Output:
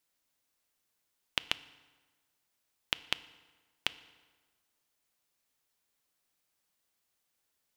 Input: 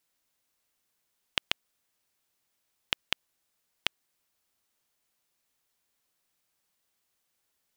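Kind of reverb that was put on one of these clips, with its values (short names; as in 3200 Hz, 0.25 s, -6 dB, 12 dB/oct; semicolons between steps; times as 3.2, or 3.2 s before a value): FDN reverb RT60 1.4 s, low-frequency decay 0.95×, high-frequency decay 0.75×, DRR 15 dB; gain -2.5 dB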